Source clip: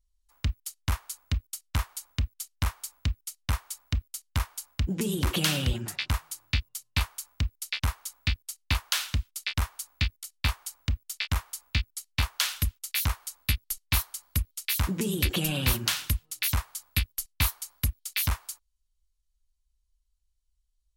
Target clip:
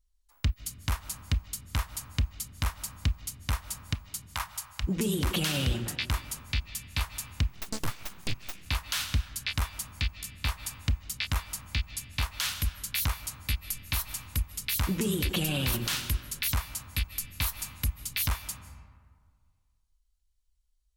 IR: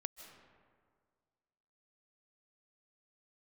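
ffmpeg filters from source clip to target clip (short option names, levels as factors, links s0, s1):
-filter_complex "[0:a]asplit=3[s0][s1][s2];[s0]afade=t=out:st=3.93:d=0.02[s3];[s1]lowshelf=f=550:t=q:w=1.5:g=-13.5,afade=t=in:st=3.93:d=0.02,afade=t=out:st=4.82:d=0.02[s4];[s2]afade=t=in:st=4.82:d=0.02[s5];[s3][s4][s5]amix=inputs=3:normalize=0,asplit=2[s6][s7];[1:a]atrim=start_sample=2205[s8];[s7][s8]afir=irnorm=-1:irlink=0,volume=1.26[s9];[s6][s9]amix=inputs=2:normalize=0,asettb=1/sr,asplit=3[s10][s11][s12];[s10]atrim=end=7.484[s13];[s11]atrim=start=7.48:end=8.66,asetpts=PTS-STARTPTS,afade=t=in:d=0.004:c=qsin,afade=t=out:st=1.176:d=0.004:c=qsin,aeval=exprs='abs(val(0))':c=same[s14];[s12]atrim=start=8.656[s15];[s13][s14]acrossfade=d=0.004:c1=hsin:c2=qsin[s16];[s16][s15]acrossfade=d=0.004:c1=qsin:c2=hsin,alimiter=limit=0.2:level=0:latency=1:release=29,volume=0.596"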